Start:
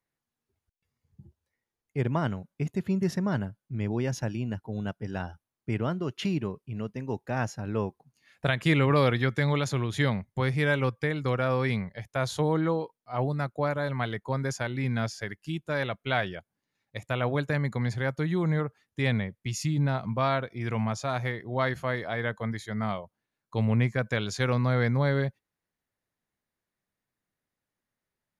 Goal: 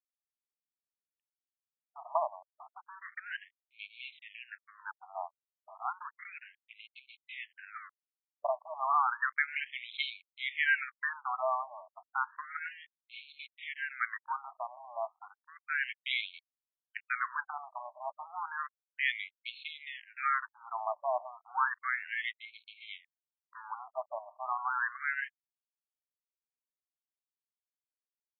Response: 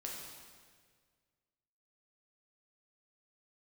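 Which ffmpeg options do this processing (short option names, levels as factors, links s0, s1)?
-af "aeval=exprs='sgn(val(0))*max(abs(val(0))-0.0126,0)':c=same,afftfilt=real='re*between(b*sr/1024,820*pow(3100/820,0.5+0.5*sin(2*PI*0.32*pts/sr))/1.41,820*pow(3100/820,0.5+0.5*sin(2*PI*0.32*pts/sr))*1.41)':imag='im*between(b*sr/1024,820*pow(3100/820,0.5+0.5*sin(2*PI*0.32*pts/sr))/1.41,820*pow(3100/820,0.5+0.5*sin(2*PI*0.32*pts/sr))*1.41)':win_size=1024:overlap=0.75,volume=1.58"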